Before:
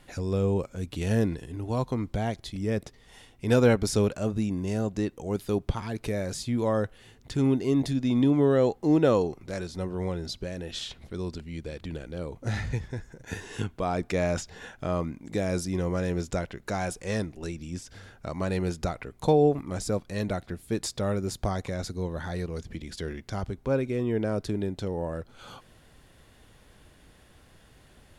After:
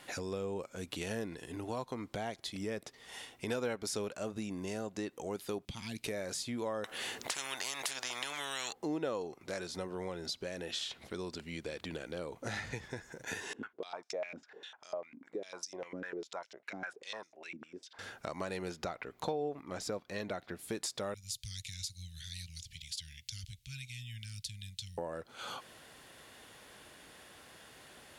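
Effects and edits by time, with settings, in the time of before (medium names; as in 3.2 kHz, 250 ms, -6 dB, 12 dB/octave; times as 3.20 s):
5.65–6.06 s: high-order bell 780 Hz -15.5 dB 2.6 oct
6.84–8.73 s: spectrum-flattening compressor 10:1
13.53–17.99 s: step-sequenced band-pass 10 Hz 260–5700 Hz
18.71–20.59 s: peaking EQ 9.3 kHz -10.5 dB 0.98 oct
21.14–24.98 s: inverse Chebyshev band-stop 350–960 Hz, stop band 70 dB
whole clip: high-pass 570 Hz 6 dB/octave; compression 3:1, threshold -44 dBFS; trim +5.5 dB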